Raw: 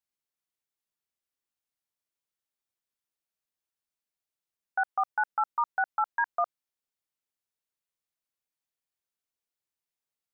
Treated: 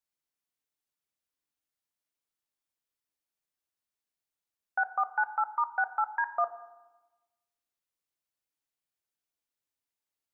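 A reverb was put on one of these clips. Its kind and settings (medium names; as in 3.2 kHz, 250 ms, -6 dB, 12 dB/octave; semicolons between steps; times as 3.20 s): FDN reverb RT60 1.1 s, low-frequency decay 1.4×, high-frequency decay 0.6×, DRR 10 dB; trim -1 dB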